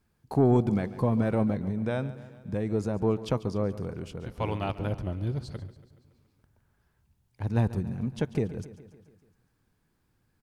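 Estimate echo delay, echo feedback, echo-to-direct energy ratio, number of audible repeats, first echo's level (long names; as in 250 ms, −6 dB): 141 ms, 60%, −14.0 dB, 5, −16.0 dB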